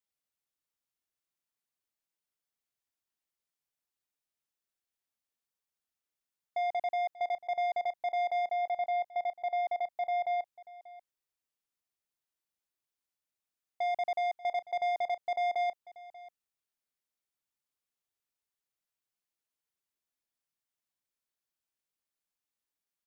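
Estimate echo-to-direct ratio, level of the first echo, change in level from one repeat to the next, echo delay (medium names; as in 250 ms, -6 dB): -18.5 dB, -18.5 dB, no regular repeats, 587 ms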